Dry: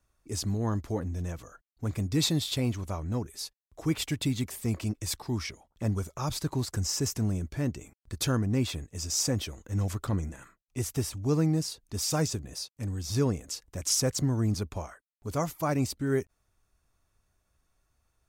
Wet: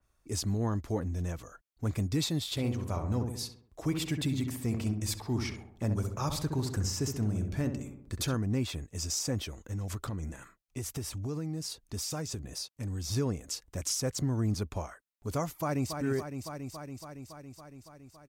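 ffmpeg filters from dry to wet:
ffmpeg -i in.wav -filter_complex "[0:a]asplit=3[link_01][link_02][link_03];[link_01]afade=type=out:start_time=2.55:duration=0.02[link_04];[link_02]asplit=2[link_05][link_06];[link_06]adelay=66,lowpass=frequency=1500:poles=1,volume=-5dB,asplit=2[link_07][link_08];[link_08]adelay=66,lowpass=frequency=1500:poles=1,volume=0.54,asplit=2[link_09][link_10];[link_10]adelay=66,lowpass=frequency=1500:poles=1,volume=0.54,asplit=2[link_11][link_12];[link_12]adelay=66,lowpass=frequency=1500:poles=1,volume=0.54,asplit=2[link_13][link_14];[link_14]adelay=66,lowpass=frequency=1500:poles=1,volume=0.54,asplit=2[link_15][link_16];[link_16]adelay=66,lowpass=frequency=1500:poles=1,volume=0.54,asplit=2[link_17][link_18];[link_18]adelay=66,lowpass=frequency=1500:poles=1,volume=0.54[link_19];[link_05][link_07][link_09][link_11][link_13][link_15][link_17][link_19]amix=inputs=8:normalize=0,afade=type=in:start_time=2.55:duration=0.02,afade=type=out:start_time=8.34:duration=0.02[link_20];[link_03]afade=type=in:start_time=8.34:duration=0.02[link_21];[link_04][link_20][link_21]amix=inputs=3:normalize=0,asettb=1/sr,asplit=3[link_22][link_23][link_24];[link_22]atrim=end=9.574[link_25];[link_23]atrim=start=9.57:end=13.11,asetpts=PTS-STARTPTS,afade=type=in:duration=0.004:curve=qsin,afade=type=out:start_time=3.536:duration=0.004:curve=qsin,acompressor=threshold=-32dB:ratio=6:attack=3.2:release=140:knee=1:detection=peak[link_26];[link_24]atrim=start=13.106[link_27];[link_25][link_26]acrossfade=duration=0.004:curve1=hsin:curve2=qsin[link_28];[link_28][link_27]acrossfade=duration=0.004:curve1=qsin:curve2=hsin,asplit=2[link_29][link_30];[link_30]afade=type=in:start_time=15.54:duration=0.01,afade=type=out:start_time=15.95:duration=0.01,aecho=0:1:280|560|840|1120|1400|1680|1960|2240|2520|2800|3080|3360:0.398107|0.29858|0.223935|0.167951|0.125964|0.0944727|0.0708545|0.0531409|0.0398557|0.0298918|0.0224188|0.0168141[link_31];[link_29][link_31]amix=inputs=2:normalize=0,alimiter=limit=-21.5dB:level=0:latency=1:release=297,adynamicequalizer=threshold=0.00398:dfrequency=3500:dqfactor=0.7:tfrequency=3500:tqfactor=0.7:attack=5:release=100:ratio=0.375:range=1.5:mode=cutabove:tftype=highshelf" out.wav

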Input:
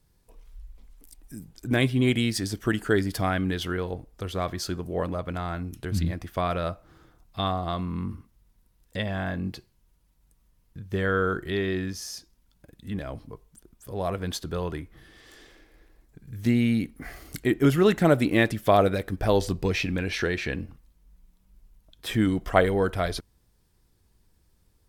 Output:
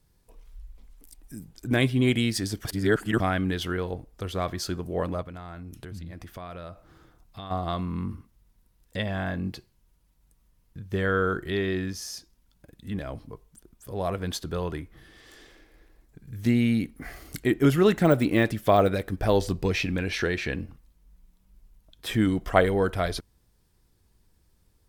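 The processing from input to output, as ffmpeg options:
ffmpeg -i in.wav -filter_complex "[0:a]asplit=3[link_01][link_02][link_03];[link_01]afade=type=out:start_time=5.22:duration=0.02[link_04];[link_02]acompressor=threshold=-38dB:ratio=4:attack=3.2:release=140:knee=1:detection=peak,afade=type=in:start_time=5.22:duration=0.02,afade=type=out:start_time=7.5:duration=0.02[link_05];[link_03]afade=type=in:start_time=7.5:duration=0.02[link_06];[link_04][link_05][link_06]amix=inputs=3:normalize=0,asettb=1/sr,asplit=3[link_07][link_08][link_09];[link_07]atrim=end=17.804[link_10];[link_08]atrim=start=17.8:end=19.61,asetpts=PTS-STARTPTS,afade=type=in:duration=0.004:curve=qsin,afade=type=out:start_time=1.806:duration=0.004:curve=qsin,deesser=0.75[link_11];[link_09]atrim=start=19.606[link_12];[link_10][link_11]acrossfade=duration=0.004:curve1=hsin:curve2=qsin[link_13];[link_13][link_12]acrossfade=duration=0.004:curve1=qsin:curve2=hsin,asplit=3[link_14][link_15][link_16];[link_14]atrim=end=2.652[link_17];[link_15]atrim=start=2.648:end=3.202,asetpts=PTS-STARTPTS,areverse[link_18];[link_16]atrim=start=3.198[link_19];[link_17][link_18]acrossfade=duration=0.004:curve1=hsin:curve2=hsin[link_20];[link_20][link_19]acrossfade=duration=0.004:curve1=hsin:curve2=hsin" out.wav

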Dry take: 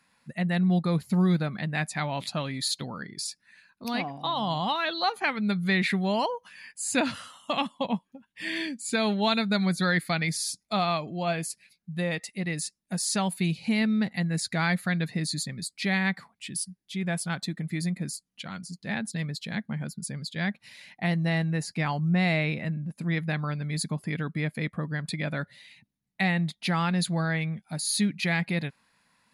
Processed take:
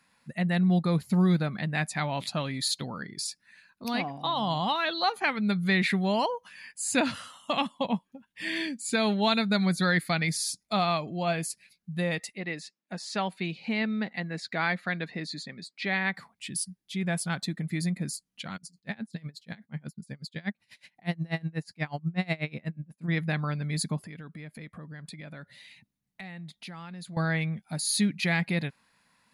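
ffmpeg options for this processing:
ffmpeg -i in.wav -filter_complex "[0:a]asplit=3[link_01][link_02][link_03];[link_01]afade=type=out:start_time=12.32:duration=0.02[link_04];[link_02]highpass=270,lowpass=3600,afade=type=in:start_time=12.32:duration=0.02,afade=type=out:start_time=16.13:duration=0.02[link_05];[link_03]afade=type=in:start_time=16.13:duration=0.02[link_06];[link_04][link_05][link_06]amix=inputs=3:normalize=0,asplit=3[link_07][link_08][link_09];[link_07]afade=type=out:start_time=18.56:duration=0.02[link_10];[link_08]aeval=exprs='val(0)*pow(10,-28*(0.5-0.5*cos(2*PI*8.2*n/s))/20)':channel_layout=same,afade=type=in:start_time=18.56:duration=0.02,afade=type=out:start_time=23.07:duration=0.02[link_11];[link_09]afade=type=in:start_time=23.07:duration=0.02[link_12];[link_10][link_11][link_12]amix=inputs=3:normalize=0,asettb=1/sr,asplit=3[link_13][link_14][link_15];[link_13]atrim=end=24.014[link_16];[link_14]atrim=start=24.01:end=27.17,asetpts=PTS-STARTPTS,afade=type=in:duration=0.004:curve=qsin,afade=type=out:start_time=3.156:duration=0.004:curve=qsin,acompressor=threshold=-42dB:ratio=4:attack=3.2:release=140:knee=1:detection=peak[link_17];[link_15]atrim=start=27.166[link_18];[link_16][link_17]acrossfade=duration=0.004:curve1=hsin:curve2=qsin[link_19];[link_19][link_18]acrossfade=duration=0.004:curve1=qsin:curve2=hsin" out.wav

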